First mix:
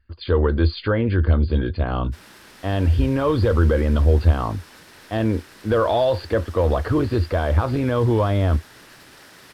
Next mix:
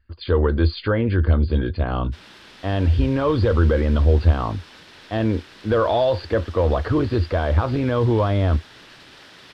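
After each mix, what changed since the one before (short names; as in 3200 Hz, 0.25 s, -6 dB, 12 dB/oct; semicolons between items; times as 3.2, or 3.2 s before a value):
background: add EQ curve 1900 Hz 0 dB, 3400 Hz +6 dB, 14000 Hz -16 dB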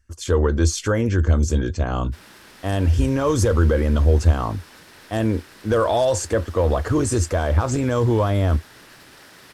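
speech: remove brick-wall FIR low-pass 4900 Hz; background: remove EQ curve 1900 Hz 0 dB, 3400 Hz +6 dB, 14000 Hz -16 dB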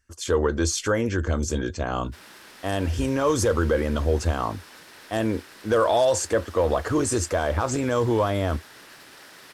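master: add low shelf 170 Hz -11.5 dB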